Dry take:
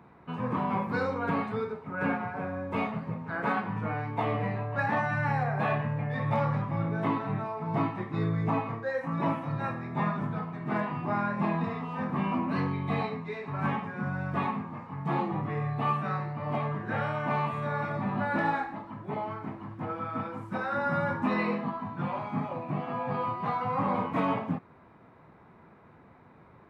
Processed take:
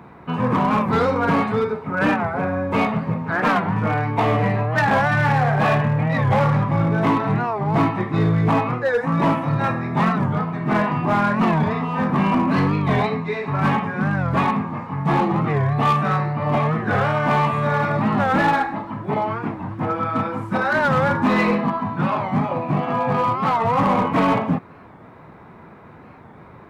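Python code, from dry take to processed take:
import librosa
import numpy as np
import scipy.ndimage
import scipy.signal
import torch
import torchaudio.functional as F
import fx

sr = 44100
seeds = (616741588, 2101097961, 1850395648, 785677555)

p1 = 10.0 ** (-26.0 / 20.0) * (np.abs((x / 10.0 ** (-26.0 / 20.0) + 3.0) % 4.0 - 2.0) - 1.0)
p2 = x + (p1 * 10.0 ** (-5.0 / 20.0))
p3 = fx.record_warp(p2, sr, rpm=45.0, depth_cents=160.0)
y = p3 * 10.0 ** (8.0 / 20.0)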